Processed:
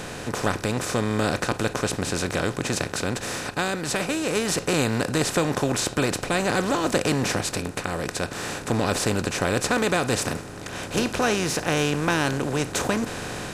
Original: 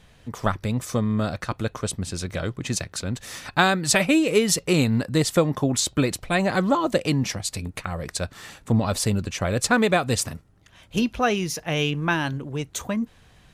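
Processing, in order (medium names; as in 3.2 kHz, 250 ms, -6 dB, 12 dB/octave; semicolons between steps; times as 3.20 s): spectral levelling over time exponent 0.4; level rider; trim -8 dB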